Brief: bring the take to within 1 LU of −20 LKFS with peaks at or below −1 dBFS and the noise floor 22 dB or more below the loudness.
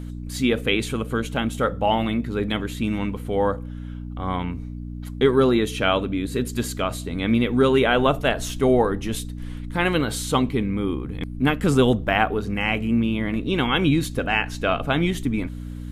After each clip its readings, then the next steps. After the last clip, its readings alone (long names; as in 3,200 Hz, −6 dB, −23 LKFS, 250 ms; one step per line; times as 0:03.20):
mains hum 60 Hz; hum harmonics up to 300 Hz; level of the hum −31 dBFS; integrated loudness −22.5 LKFS; sample peak −5.0 dBFS; target loudness −20.0 LKFS
→ hum removal 60 Hz, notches 5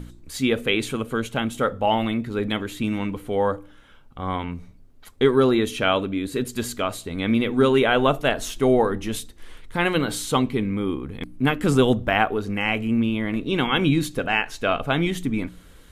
mains hum none found; integrated loudness −23.0 LKFS; sample peak −4.5 dBFS; target loudness −20.0 LKFS
→ level +3 dB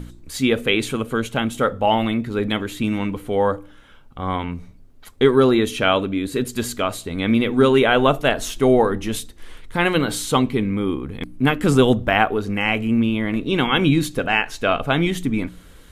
integrated loudness −20.0 LKFS; sample peak −1.5 dBFS; background noise floor −46 dBFS